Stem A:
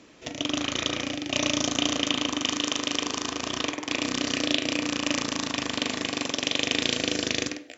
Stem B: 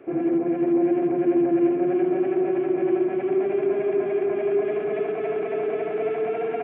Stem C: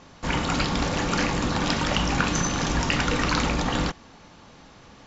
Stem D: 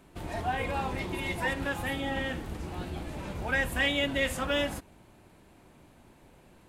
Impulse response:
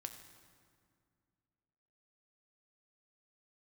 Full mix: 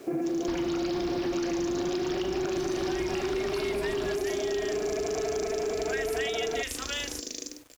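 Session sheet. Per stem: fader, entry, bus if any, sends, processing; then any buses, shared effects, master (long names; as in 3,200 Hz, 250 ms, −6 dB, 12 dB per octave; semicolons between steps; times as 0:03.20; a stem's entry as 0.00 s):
−9.0 dB, 0.00 s, bus A, no send, high-pass filter 240 Hz 24 dB per octave; flat-topped bell 1,600 Hz −13 dB 2.7 octaves
+1.0 dB, 0.00 s, no bus, no send, brickwall limiter −21 dBFS, peak gain reduction 8.5 dB
+2.0 dB, 0.25 s, bus A, no send, Butterworth low-pass 5,600 Hz 96 dB per octave; downward compressor, threshold −27 dBFS, peak gain reduction 9.5 dB
+2.5 dB, 2.40 s, no bus, no send, guitar amp tone stack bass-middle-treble 10-0-10
bus A: 0.0 dB, high-shelf EQ 4,500 Hz +11.5 dB; downward compressor, threshold −31 dBFS, peak gain reduction 10.5 dB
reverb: not used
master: bit reduction 9 bits; downward compressor 4 to 1, threshold −27 dBFS, peak gain reduction 5.5 dB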